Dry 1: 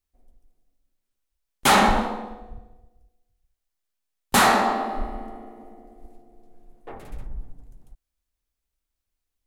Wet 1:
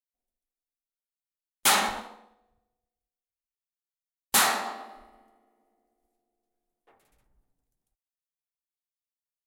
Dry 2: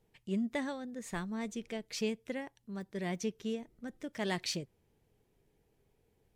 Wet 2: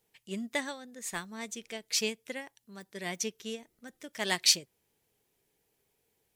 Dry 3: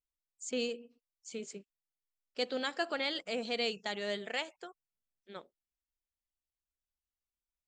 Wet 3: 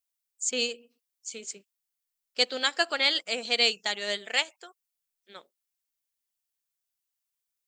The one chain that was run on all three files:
tilt EQ +3 dB/octave; upward expansion 1.5:1, over -44 dBFS; peak normalisation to -9 dBFS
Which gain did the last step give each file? -6.5 dB, +7.5 dB, +8.5 dB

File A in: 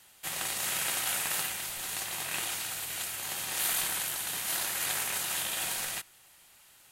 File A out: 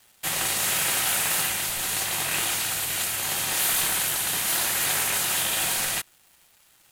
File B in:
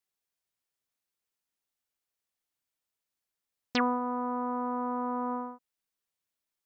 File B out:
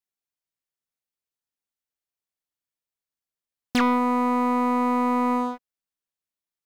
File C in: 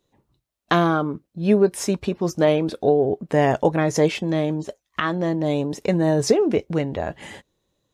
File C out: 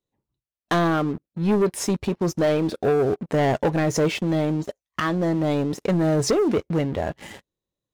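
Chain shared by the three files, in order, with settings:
bass shelf 350 Hz +2.5 dB; waveshaping leveller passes 3; normalise loudness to -23 LUFS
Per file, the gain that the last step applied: -1.5 dB, 0.0 dB, -11.0 dB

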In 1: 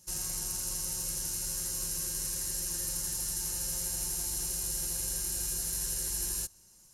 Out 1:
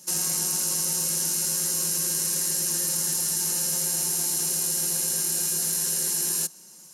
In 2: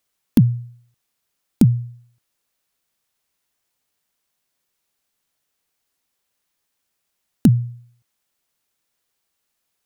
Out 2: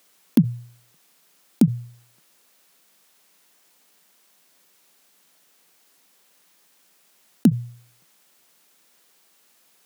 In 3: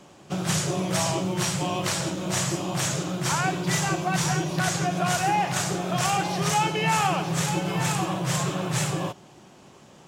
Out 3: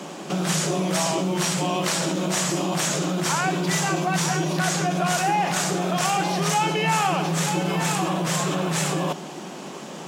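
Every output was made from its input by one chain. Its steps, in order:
elliptic high-pass 160 Hz, stop band 40 dB; in parallel at +2 dB: compressor with a negative ratio -38 dBFS, ratio -1; on the sum: normalise loudness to -23 LUFS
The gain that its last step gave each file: +4.0 dB, -1.0 dB, +1.0 dB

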